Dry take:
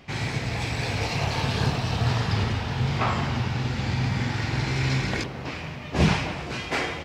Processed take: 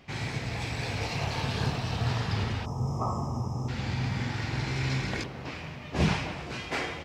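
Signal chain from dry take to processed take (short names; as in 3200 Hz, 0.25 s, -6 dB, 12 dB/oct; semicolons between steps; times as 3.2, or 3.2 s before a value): spectral gain 2.65–3.69, 1300–5000 Hz -28 dB; gain -5 dB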